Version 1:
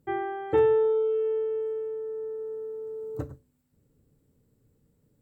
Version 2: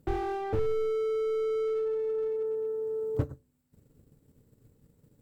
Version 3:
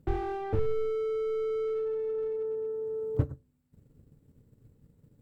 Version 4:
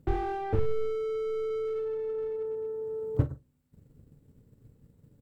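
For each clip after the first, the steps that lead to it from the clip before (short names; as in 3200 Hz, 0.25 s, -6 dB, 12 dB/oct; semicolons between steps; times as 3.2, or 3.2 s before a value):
transient shaper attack +7 dB, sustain -6 dB; slew limiter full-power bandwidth 11 Hz; gain +4 dB
tone controls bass +5 dB, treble -5 dB; gain -2 dB
doubler 42 ms -12 dB; gain +1.5 dB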